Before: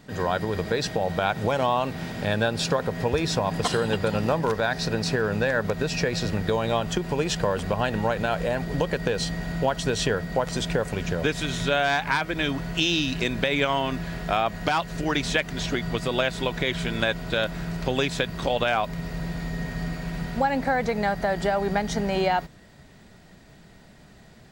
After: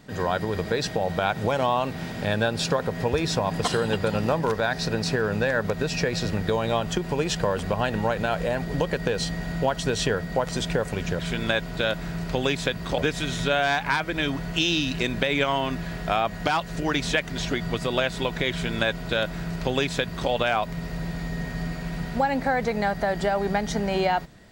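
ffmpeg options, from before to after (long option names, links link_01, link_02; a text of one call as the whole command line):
ffmpeg -i in.wav -filter_complex "[0:a]asplit=3[link_01][link_02][link_03];[link_01]atrim=end=11.192[link_04];[link_02]atrim=start=16.718:end=18.512[link_05];[link_03]atrim=start=11.188[link_06];[link_04][link_05]acrossfade=duration=0.004:curve1=hsin:curve2=hsin[link_07];[link_07][link_06]acrossfade=duration=0.004:curve1=hsin:curve2=hsin" out.wav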